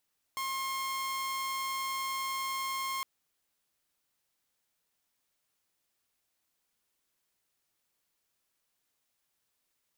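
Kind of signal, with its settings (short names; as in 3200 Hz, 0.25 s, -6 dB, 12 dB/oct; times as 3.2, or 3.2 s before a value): tone saw 1070 Hz -30 dBFS 2.66 s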